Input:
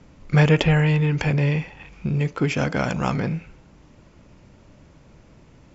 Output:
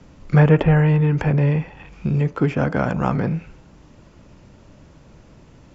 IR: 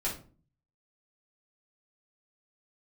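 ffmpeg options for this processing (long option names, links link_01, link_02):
-filter_complex "[0:a]equalizer=frequency=2200:width=5.2:gain=-3.5,acrossover=split=380|2000[link_01][link_02][link_03];[link_03]acompressor=threshold=-50dB:ratio=6[link_04];[link_01][link_02][link_04]amix=inputs=3:normalize=0,volume=3dB"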